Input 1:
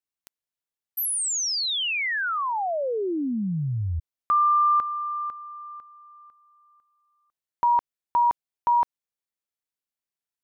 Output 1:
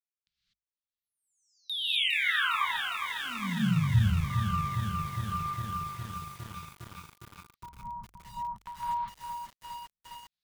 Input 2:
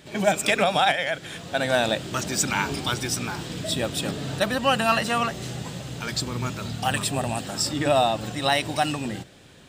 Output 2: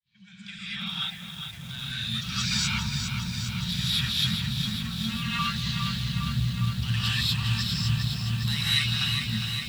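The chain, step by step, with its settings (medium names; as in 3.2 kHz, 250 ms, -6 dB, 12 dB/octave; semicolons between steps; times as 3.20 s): fade-in on the opening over 2.38 s; reverb removal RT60 0.7 s; treble shelf 8.4 kHz -12 dB; LFO low-pass square 0.59 Hz 600–4100 Hz; in parallel at 0 dB: compression 10:1, threshold -29 dBFS; on the sum: amplifier tone stack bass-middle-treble 6-0-2; hum notches 50/100/150 Hz; sine folder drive 9 dB, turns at -21 dBFS; elliptic band-stop 200–960 Hz, stop band 40 dB; gated-style reverb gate 270 ms rising, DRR -8 dB; rotary cabinet horn 0.65 Hz; bit-crushed delay 408 ms, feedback 80%, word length 7-bit, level -6 dB; trim -3.5 dB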